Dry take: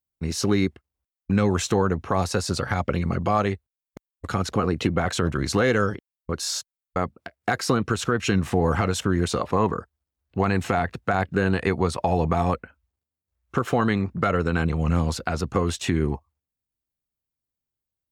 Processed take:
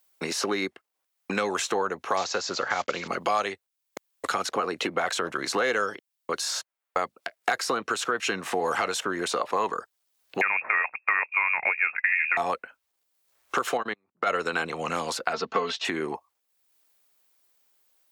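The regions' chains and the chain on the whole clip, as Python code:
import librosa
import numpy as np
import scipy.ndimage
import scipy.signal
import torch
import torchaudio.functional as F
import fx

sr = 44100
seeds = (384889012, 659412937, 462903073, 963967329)

y = fx.chain(x, sr, fx.block_float(bits=5),
    fx.lowpass(hz=7300.0, slope=12),
    fx.resample_bad(factor=3, down='none', up='filtered'), at=(2.17, 3.08))
y = fx.chain(y, sr, fx.low_shelf(hz=180.0, db=-9.0),
    fx.freq_invert(carrier_hz=2600), at=(10.41, 12.37))
y = fx.chain(y, sr, fx.level_steps(step_db=22),
    fx.spacing_loss(db_at_10k=20),
    fx.upward_expand(threshold_db=-34.0, expansion=2.5), at=(13.77, 14.27))
y = fx.chain(y, sr, fx.lowpass(hz=4900.0, slope=24),
    fx.comb(ms=4.5, depth=0.77), at=(15.33, 15.85))
y = scipy.signal.sosfilt(scipy.signal.butter(2, 530.0, 'highpass', fs=sr, output='sos'), y)
y = fx.band_squash(y, sr, depth_pct=70)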